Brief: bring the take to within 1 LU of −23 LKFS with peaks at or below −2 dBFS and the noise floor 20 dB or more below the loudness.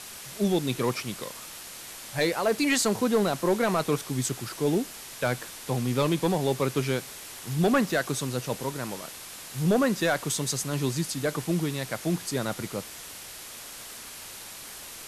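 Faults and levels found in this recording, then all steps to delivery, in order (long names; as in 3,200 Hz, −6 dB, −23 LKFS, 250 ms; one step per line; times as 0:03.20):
share of clipped samples 0.5%; peaks flattened at −16.5 dBFS; background noise floor −43 dBFS; target noise floor −48 dBFS; integrated loudness −27.5 LKFS; sample peak −16.5 dBFS; target loudness −23.0 LKFS
→ clipped peaks rebuilt −16.5 dBFS
noise reduction from a noise print 6 dB
level +4.5 dB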